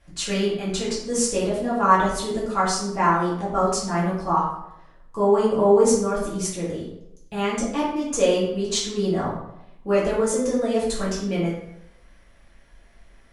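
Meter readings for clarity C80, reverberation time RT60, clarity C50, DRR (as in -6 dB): 6.0 dB, 0.80 s, 2.5 dB, -8.5 dB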